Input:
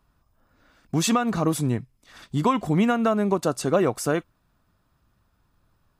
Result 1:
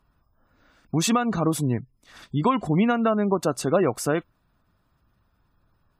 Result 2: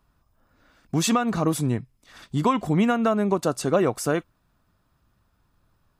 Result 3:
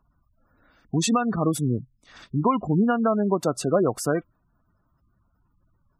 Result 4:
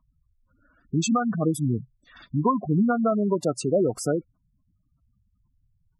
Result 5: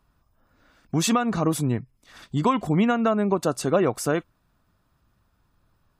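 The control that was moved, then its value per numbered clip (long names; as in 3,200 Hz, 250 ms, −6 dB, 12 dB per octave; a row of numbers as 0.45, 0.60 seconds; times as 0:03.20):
gate on every frequency bin, under each frame's peak: −35, −60, −20, −10, −45 decibels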